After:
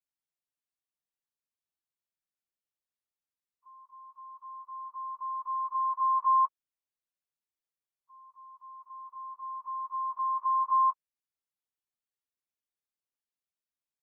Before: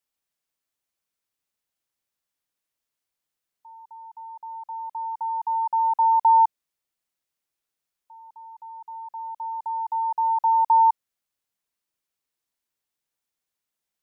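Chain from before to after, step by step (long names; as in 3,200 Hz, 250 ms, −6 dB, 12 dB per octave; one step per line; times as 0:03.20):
partials spread apart or drawn together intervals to 112%
level −7.5 dB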